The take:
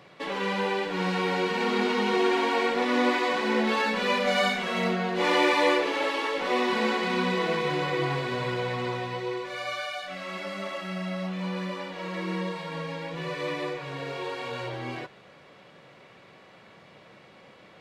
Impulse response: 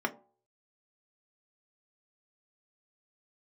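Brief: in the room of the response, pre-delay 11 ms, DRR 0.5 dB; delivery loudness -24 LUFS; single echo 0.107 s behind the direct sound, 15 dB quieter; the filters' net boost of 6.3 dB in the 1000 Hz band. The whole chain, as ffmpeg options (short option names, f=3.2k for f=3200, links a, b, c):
-filter_complex "[0:a]equalizer=f=1k:t=o:g=7.5,aecho=1:1:107:0.178,asplit=2[a][b];[1:a]atrim=start_sample=2205,adelay=11[c];[b][c]afir=irnorm=-1:irlink=0,volume=-8dB[d];[a][d]amix=inputs=2:normalize=0,volume=-3dB"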